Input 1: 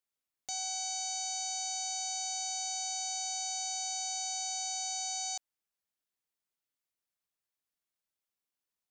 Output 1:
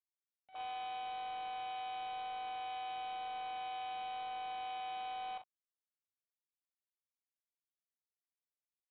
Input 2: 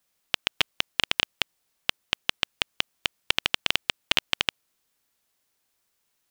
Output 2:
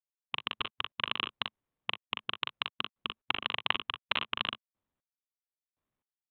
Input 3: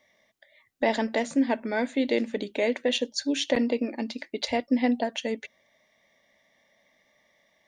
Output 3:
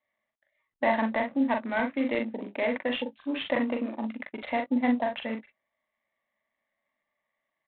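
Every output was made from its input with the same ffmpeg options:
-af "equalizer=f=190:w=1.1:g=-8.5,afwtdn=0.01,highpass=f=120:w=0.5412,highpass=f=120:w=1.3066,equalizer=f=220:t=q:w=4:g=6,equalizer=f=430:t=q:w=4:g=-10,equalizer=f=1100:t=q:w=4:g=7,lowpass=f=2700:w=0.5412,lowpass=f=2700:w=1.3066,aecho=1:1:41|60:0.596|0.158" -ar 8000 -c:a adpcm_ima_wav

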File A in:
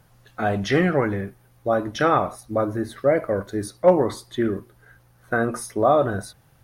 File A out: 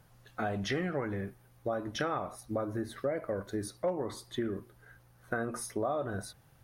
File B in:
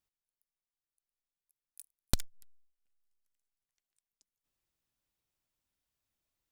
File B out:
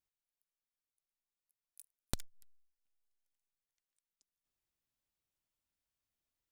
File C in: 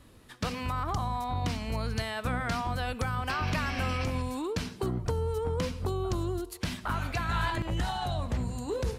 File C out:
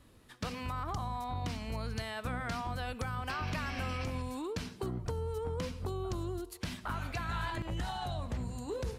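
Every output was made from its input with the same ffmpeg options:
-af "acompressor=threshold=0.0501:ratio=4,volume=0.562"

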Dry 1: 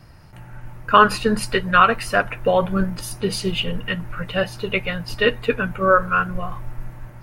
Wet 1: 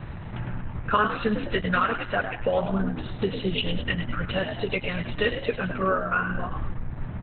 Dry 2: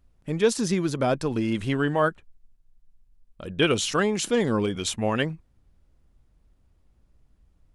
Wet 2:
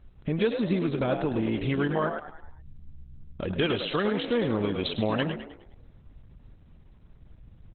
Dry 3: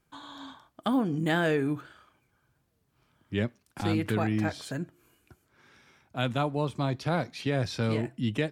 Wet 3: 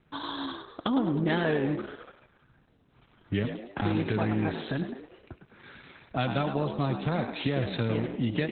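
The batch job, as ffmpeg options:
-filter_complex "[0:a]aresample=32000,aresample=44100,acompressor=threshold=0.01:ratio=2.5,asplit=2[s0][s1];[s1]asplit=5[s2][s3][s4][s5][s6];[s2]adelay=104,afreqshift=62,volume=0.398[s7];[s3]adelay=208,afreqshift=124,volume=0.18[s8];[s4]adelay=312,afreqshift=186,volume=0.0804[s9];[s5]adelay=416,afreqshift=248,volume=0.0363[s10];[s6]adelay=520,afreqshift=310,volume=0.0164[s11];[s7][s8][s9][s10][s11]amix=inputs=5:normalize=0[s12];[s0][s12]amix=inputs=2:normalize=0,acontrast=67,volume=1.58" -ar 48000 -c:a libopus -b:a 8k

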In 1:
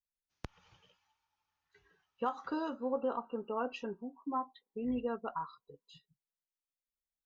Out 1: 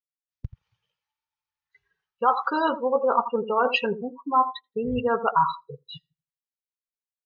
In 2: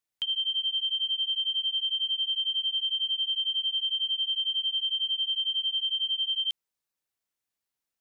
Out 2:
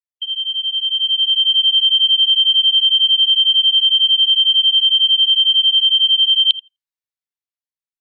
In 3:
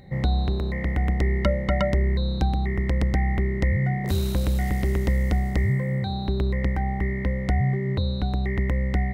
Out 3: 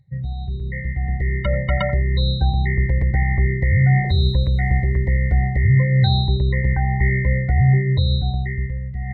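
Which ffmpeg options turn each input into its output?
-filter_complex "[0:a]areverse,acompressor=threshold=0.0178:ratio=12,areverse,equalizer=f=125:t=o:w=1:g=6,equalizer=f=250:t=o:w=1:g=-9,equalizer=f=500:t=o:w=1:g=4,equalizer=f=1000:t=o:w=1:g=5,equalizer=f=2000:t=o:w=1:g=9,equalizer=f=4000:t=o:w=1:g=7,dynaudnorm=f=200:g=11:m=2.82,bass=f=250:g=7,treble=f=4000:g=6,asplit=2[s0][s1];[s1]adelay=84,lowpass=f=2200:p=1,volume=0.299,asplit=2[s2][s3];[s3]adelay=84,lowpass=f=2200:p=1,volume=0.23,asplit=2[s4][s5];[s5]adelay=84,lowpass=f=2200:p=1,volume=0.23[s6];[s2][s4][s6]amix=inputs=3:normalize=0[s7];[s0][s7]amix=inputs=2:normalize=0,afftdn=nr=29:nf=-29,volume=1.58"

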